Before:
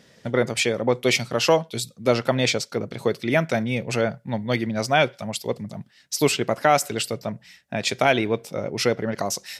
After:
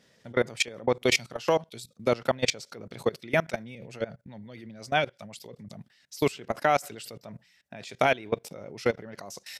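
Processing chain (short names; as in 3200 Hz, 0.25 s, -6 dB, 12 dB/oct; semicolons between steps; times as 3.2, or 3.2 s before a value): low shelf 440 Hz -2.5 dB; level quantiser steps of 21 dB; 3.75–5.79 rotary speaker horn 8 Hz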